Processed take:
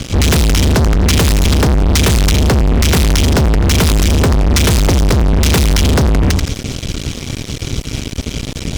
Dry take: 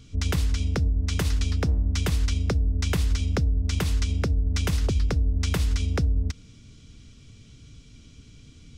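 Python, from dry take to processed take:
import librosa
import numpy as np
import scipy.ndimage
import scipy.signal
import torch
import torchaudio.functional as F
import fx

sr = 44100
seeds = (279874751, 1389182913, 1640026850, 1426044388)

y = fx.echo_feedback(x, sr, ms=86, feedback_pct=36, wet_db=-11.0)
y = fx.fuzz(y, sr, gain_db=43.0, gate_db=-48.0)
y = y * 10.0 ** (4.0 / 20.0)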